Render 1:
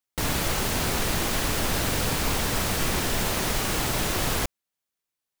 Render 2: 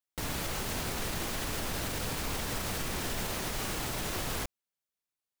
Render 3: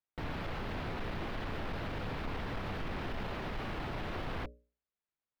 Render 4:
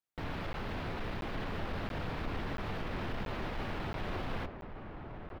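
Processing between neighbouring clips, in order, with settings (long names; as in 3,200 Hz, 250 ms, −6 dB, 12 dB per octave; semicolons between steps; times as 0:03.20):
brickwall limiter −18 dBFS, peak gain reduction 5 dB; level −6.5 dB
mains-hum notches 60/120/180/240/300/360/420/480/540/600 Hz; gain into a clipping stage and back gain 32.5 dB; high-frequency loss of the air 370 metres; level +1 dB
flanger 1.8 Hz, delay 8.4 ms, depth 3.1 ms, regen −83%; slap from a distant wall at 200 metres, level −6 dB; regular buffer underruns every 0.68 s, samples 512, zero, from 0:00.53; level +4.5 dB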